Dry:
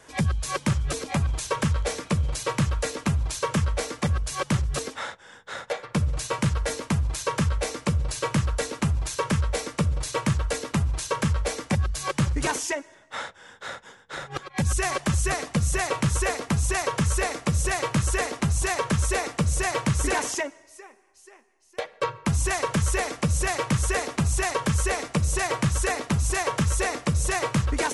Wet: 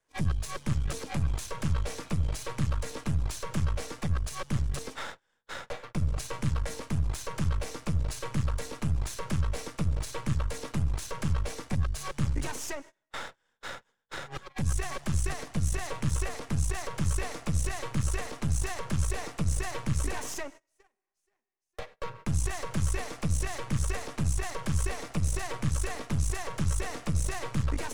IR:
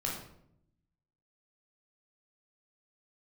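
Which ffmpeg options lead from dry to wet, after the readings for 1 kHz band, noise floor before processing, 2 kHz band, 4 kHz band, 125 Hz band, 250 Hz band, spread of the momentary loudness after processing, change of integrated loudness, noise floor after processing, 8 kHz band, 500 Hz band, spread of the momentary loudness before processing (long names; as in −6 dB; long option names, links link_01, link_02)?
−10.0 dB, −53 dBFS, −10.5 dB, −8.5 dB, −4.5 dB, −7.0 dB, 9 LU, −6.5 dB, −80 dBFS, −8.5 dB, −10.5 dB, 8 LU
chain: -filter_complex "[0:a]aeval=exprs='if(lt(val(0),0),0.251*val(0),val(0))':channel_layout=same,agate=range=-25dB:threshold=-43dB:ratio=16:detection=peak,acrossover=split=180[link_01][link_02];[link_02]alimiter=level_in=2.5dB:limit=-24dB:level=0:latency=1:release=174,volume=-2.5dB[link_03];[link_01][link_03]amix=inputs=2:normalize=0"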